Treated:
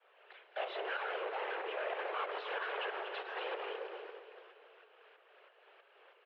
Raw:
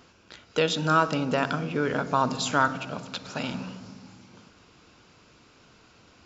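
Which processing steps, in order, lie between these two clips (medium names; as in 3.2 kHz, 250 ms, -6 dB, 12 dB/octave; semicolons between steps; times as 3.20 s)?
jump at every zero crossing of -34 dBFS; valve stage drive 23 dB, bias 0.7; expander -34 dBFS; waveshaping leveller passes 1; overload inside the chain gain 35 dB; in parallel at -7.5 dB: bit crusher 8-bit; on the sum: tremolo saw up 3.1 Hz, depth 65%; delay 239 ms -10.5 dB; peak limiter -36.5 dBFS, peak gain reduction 5.5 dB; whisper effect; mistuned SSB +190 Hz 230–2900 Hz; on a send: feedback delay 282 ms, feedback 58%, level -16 dB; on the sum: trim +2 dB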